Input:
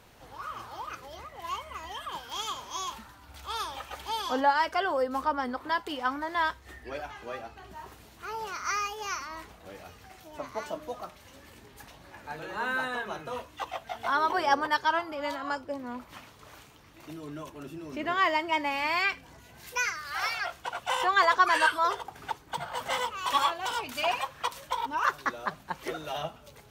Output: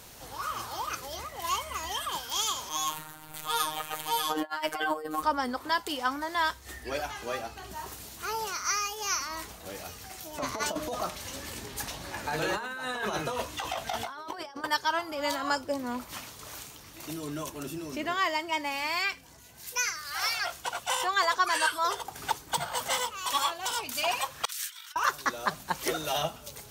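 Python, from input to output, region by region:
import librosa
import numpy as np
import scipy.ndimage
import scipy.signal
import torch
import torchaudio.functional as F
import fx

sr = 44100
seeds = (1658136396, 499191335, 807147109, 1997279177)

y = fx.chain(x, sr, fx.peak_eq(hz=5300.0, db=-11.0, octaves=0.78),
    fx.over_compress(threshold_db=-30.0, ratio=-0.5),
    fx.robotise(hz=155.0), at=(2.69, 5.23))
y = fx.chain(y, sr, fx.high_shelf(hz=9000.0, db=-7.5),
    fx.over_compress(threshold_db=-39.0, ratio=-1.0), at=(10.38, 14.64))
y = fx.chain(y, sr, fx.steep_highpass(hz=1400.0, slope=48),
    fx.clip_hard(threshold_db=-29.0),
    fx.over_compress(threshold_db=-52.0, ratio=-1.0), at=(24.45, 24.96))
y = fx.bass_treble(y, sr, bass_db=0, treble_db=12)
y = fx.rider(y, sr, range_db=4, speed_s=0.5)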